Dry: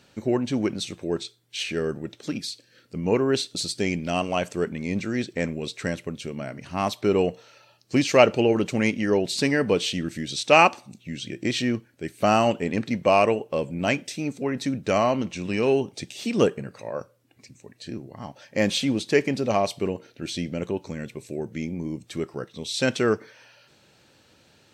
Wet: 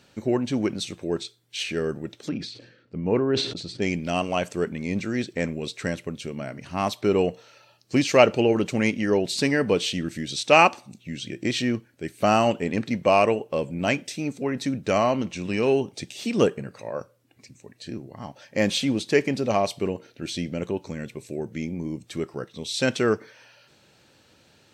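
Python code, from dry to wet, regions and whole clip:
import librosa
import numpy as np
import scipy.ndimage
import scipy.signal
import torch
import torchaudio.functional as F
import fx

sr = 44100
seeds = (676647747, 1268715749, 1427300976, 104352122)

y = fx.chain(x, sr, fx.spacing_loss(db_at_10k=27),
    fx.sustainer(db_per_s=71.0), at=(2.29, 3.82))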